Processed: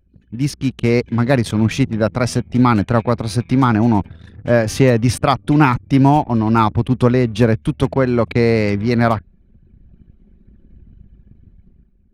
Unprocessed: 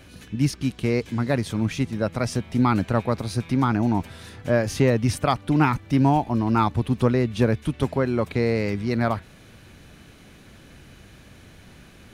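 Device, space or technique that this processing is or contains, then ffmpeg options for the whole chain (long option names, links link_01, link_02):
voice memo with heavy noise removal: -af "anlmdn=1.58,dynaudnorm=framelen=110:gausssize=11:maxgain=11.5dB"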